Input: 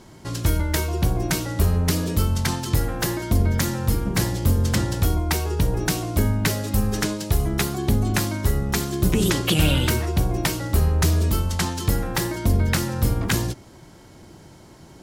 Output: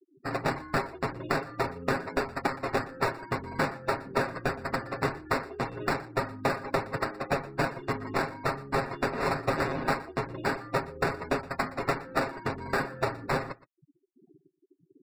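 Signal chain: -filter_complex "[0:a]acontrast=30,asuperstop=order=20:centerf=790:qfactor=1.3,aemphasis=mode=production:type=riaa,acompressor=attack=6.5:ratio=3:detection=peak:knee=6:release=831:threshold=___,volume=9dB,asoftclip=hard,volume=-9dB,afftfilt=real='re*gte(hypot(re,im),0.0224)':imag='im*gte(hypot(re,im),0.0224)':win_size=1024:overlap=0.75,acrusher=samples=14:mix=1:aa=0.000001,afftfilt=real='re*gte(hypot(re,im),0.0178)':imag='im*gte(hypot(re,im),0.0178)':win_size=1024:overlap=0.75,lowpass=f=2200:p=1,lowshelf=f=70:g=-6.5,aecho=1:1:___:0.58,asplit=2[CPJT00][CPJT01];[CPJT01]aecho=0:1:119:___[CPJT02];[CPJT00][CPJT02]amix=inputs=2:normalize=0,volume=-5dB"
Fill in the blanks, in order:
-21dB, 7.4, 0.106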